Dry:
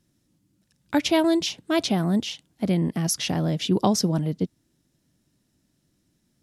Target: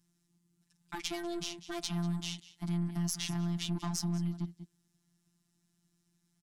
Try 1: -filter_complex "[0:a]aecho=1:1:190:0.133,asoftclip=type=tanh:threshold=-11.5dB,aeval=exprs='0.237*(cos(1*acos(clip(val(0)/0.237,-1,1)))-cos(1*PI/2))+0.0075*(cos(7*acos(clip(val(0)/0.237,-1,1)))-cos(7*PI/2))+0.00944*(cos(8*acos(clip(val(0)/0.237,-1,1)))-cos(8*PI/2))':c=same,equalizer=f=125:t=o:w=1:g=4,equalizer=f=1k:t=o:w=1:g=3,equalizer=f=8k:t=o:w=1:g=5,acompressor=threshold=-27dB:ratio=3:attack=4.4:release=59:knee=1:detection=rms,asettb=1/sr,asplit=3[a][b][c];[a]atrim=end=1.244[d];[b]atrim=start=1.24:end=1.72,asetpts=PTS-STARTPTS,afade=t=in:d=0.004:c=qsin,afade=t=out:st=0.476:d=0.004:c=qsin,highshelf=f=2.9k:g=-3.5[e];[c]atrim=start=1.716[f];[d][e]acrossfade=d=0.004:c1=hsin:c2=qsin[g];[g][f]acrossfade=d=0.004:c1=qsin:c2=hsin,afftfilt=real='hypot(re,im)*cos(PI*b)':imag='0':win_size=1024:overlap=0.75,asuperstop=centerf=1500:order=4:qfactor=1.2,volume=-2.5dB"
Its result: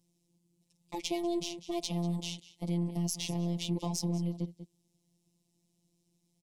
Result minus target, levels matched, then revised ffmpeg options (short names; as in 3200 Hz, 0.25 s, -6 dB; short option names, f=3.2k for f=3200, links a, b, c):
soft clip: distortion -10 dB; 2000 Hz band -4.5 dB
-filter_complex "[0:a]aecho=1:1:190:0.133,asoftclip=type=tanh:threshold=-19.5dB,aeval=exprs='0.237*(cos(1*acos(clip(val(0)/0.237,-1,1)))-cos(1*PI/2))+0.0075*(cos(7*acos(clip(val(0)/0.237,-1,1)))-cos(7*PI/2))+0.00944*(cos(8*acos(clip(val(0)/0.237,-1,1)))-cos(8*PI/2))':c=same,equalizer=f=125:t=o:w=1:g=4,equalizer=f=1k:t=o:w=1:g=3,equalizer=f=8k:t=o:w=1:g=5,acompressor=threshold=-27dB:ratio=3:attack=4.4:release=59:knee=1:detection=rms,asettb=1/sr,asplit=3[a][b][c];[a]atrim=end=1.244[d];[b]atrim=start=1.24:end=1.72,asetpts=PTS-STARTPTS,afade=t=in:d=0.004:c=qsin,afade=t=out:st=0.476:d=0.004:c=qsin,highshelf=f=2.9k:g=-3.5[e];[c]atrim=start=1.716[f];[d][e]acrossfade=d=0.004:c1=hsin:c2=qsin[g];[g][f]acrossfade=d=0.004:c1=qsin:c2=hsin,afftfilt=real='hypot(re,im)*cos(PI*b)':imag='0':win_size=1024:overlap=0.75,asuperstop=centerf=480:order=4:qfactor=1.2,volume=-2.5dB"